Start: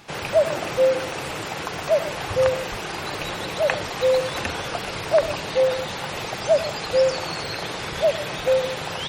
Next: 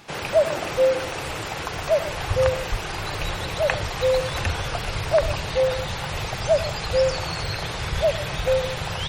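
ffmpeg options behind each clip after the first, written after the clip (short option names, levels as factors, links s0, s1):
-af "asubboost=boost=8.5:cutoff=88"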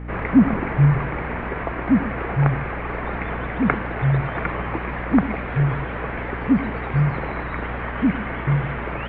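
-af "asubboost=boost=6:cutoff=180,highpass=f=320:t=q:w=0.5412,highpass=f=320:t=q:w=1.307,lowpass=f=2500:t=q:w=0.5176,lowpass=f=2500:t=q:w=0.7071,lowpass=f=2500:t=q:w=1.932,afreqshift=-380,aeval=exprs='val(0)+0.0158*(sin(2*PI*60*n/s)+sin(2*PI*2*60*n/s)/2+sin(2*PI*3*60*n/s)/3+sin(2*PI*4*60*n/s)/4+sin(2*PI*5*60*n/s)/5)':c=same,volume=1.78"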